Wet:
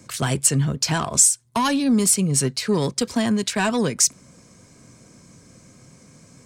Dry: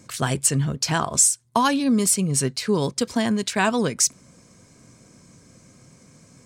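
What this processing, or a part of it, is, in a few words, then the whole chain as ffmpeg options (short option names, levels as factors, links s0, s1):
one-band saturation: -filter_complex "[0:a]acrossover=split=240|3400[s0][s1][s2];[s1]asoftclip=type=tanh:threshold=0.112[s3];[s0][s3][s2]amix=inputs=3:normalize=0,volume=1.26"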